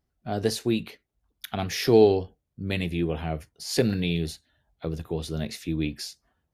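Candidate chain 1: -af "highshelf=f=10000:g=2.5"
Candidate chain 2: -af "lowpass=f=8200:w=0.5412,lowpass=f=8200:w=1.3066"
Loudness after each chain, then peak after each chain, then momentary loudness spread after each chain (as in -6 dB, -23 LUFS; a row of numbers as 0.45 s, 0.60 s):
-26.5 LUFS, -27.0 LUFS; -6.5 dBFS, -6.5 dBFS; 17 LU, 17 LU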